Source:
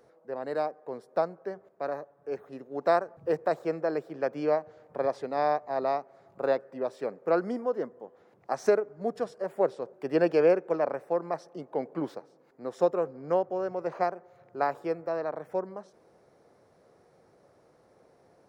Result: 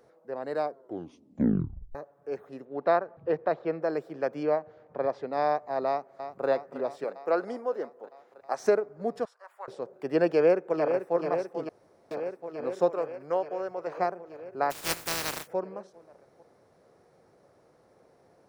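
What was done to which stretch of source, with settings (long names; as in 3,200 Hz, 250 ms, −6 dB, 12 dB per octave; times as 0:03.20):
0:00.62: tape stop 1.33 s
0:02.65–0:03.82: low-pass filter 4,000 Hz 24 dB per octave
0:04.43–0:05.33: high-frequency loss of the air 130 metres
0:05.87–0:06.48: delay throw 320 ms, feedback 75%, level −9.5 dB
0:07.04–0:08.60: bass and treble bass −13 dB, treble +1 dB
0:09.25–0:09.68: four-pole ladder high-pass 900 Hz, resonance 45%
0:10.28–0:11.14: delay throw 440 ms, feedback 80%, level −7.5 dB
0:11.69–0:12.11: fill with room tone
0:12.89–0:13.98: parametric band 200 Hz −9.5 dB 1.7 octaves
0:14.70–0:15.46: compressing power law on the bin magnitudes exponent 0.19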